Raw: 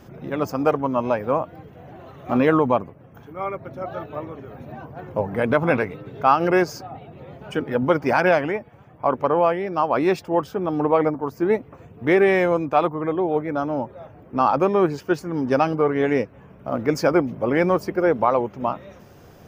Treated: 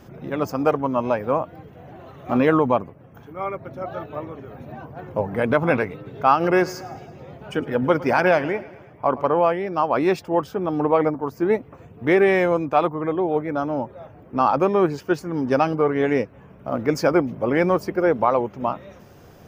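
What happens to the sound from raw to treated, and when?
0:06.33–0:09.30: repeating echo 109 ms, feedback 58%, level −18.5 dB

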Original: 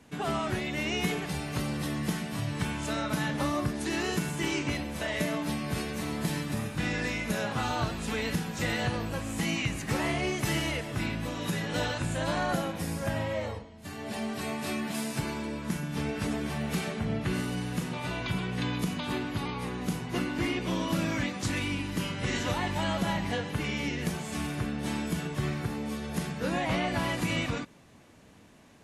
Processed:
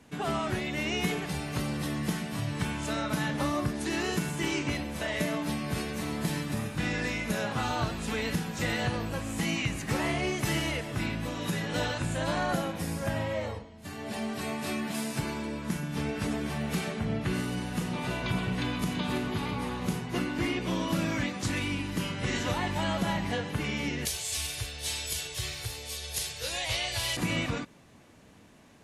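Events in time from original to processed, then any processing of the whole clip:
0:17.42–0:20.00: delay that swaps between a low-pass and a high-pass 166 ms, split 1,100 Hz, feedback 59%, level −4 dB
0:24.05–0:27.17: drawn EQ curve 110 Hz 0 dB, 160 Hz −21 dB, 240 Hz −26 dB, 450 Hz −6 dB, 1,300 Hz −9 dB, 3,900 Hz +11 dB

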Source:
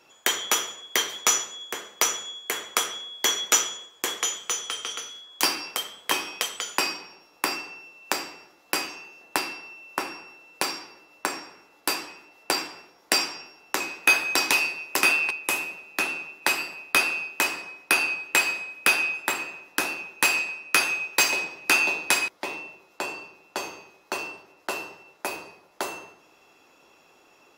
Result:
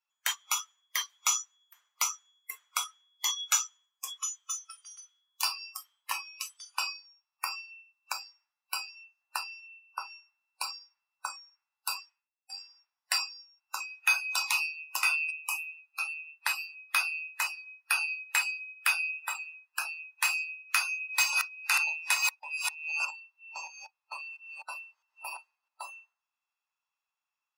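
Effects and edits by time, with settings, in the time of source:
0:11.97–0:12.76: duck −14.5 dB, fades 0.32 s
0:20.42–0:25.85: delay that plays each chunk backwards 658 ms, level −3 dB
whole clip: Chebyshev high-pass filter 970 Hz, order 3; noise reduction from a noise print of the clip's start 25 dB; level −5.5 dB

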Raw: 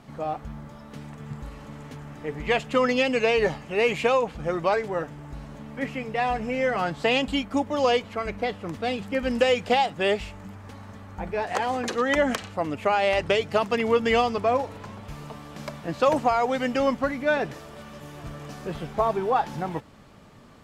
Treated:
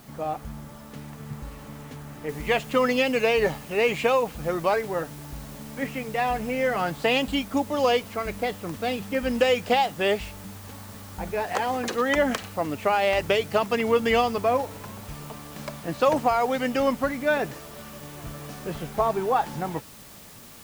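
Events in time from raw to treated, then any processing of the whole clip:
0:02.29: noise floor change −55 dB −48 dB

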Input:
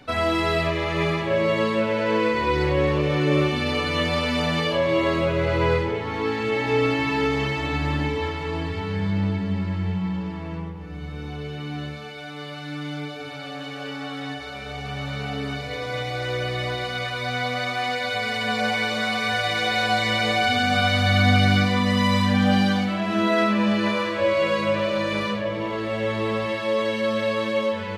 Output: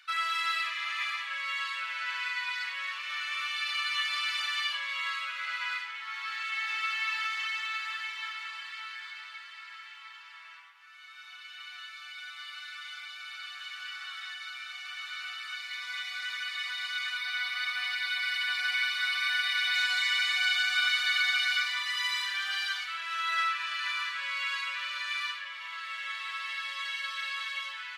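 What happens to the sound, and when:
0:17.17–0:19.74: parametric band 7,000 Hz −9.5 dB 0.32 octaves
whole clip: Chebyshev high-pass filter 1,300 Hz, order 4; level −2.5 dB

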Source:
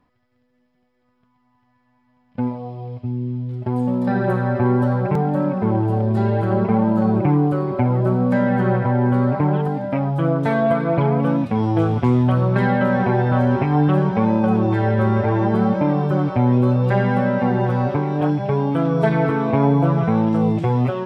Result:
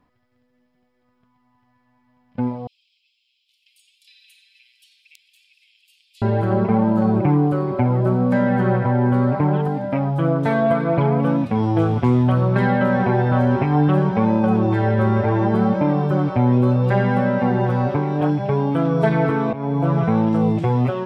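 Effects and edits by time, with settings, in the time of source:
0:02.67–0:06.22: Butterworth high-pass 2,500 Hz 72 dB per octave
0:19.53–0:19.96: fade in, from −17.5 dB

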